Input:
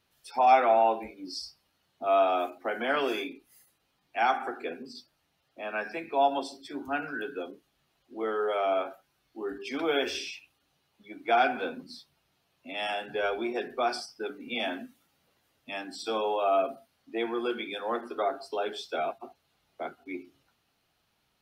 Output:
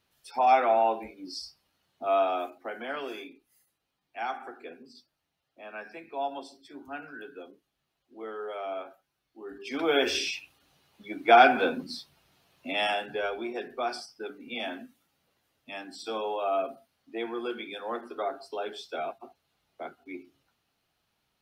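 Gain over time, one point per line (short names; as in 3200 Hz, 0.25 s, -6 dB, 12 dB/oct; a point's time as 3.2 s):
2.13 s -1 dB
3 s -8 dB
9.45 s -8 dB
9.72 s 0 dB
10.28 s +7 dB
12.72 s +7 dB
13.31 s -3 dB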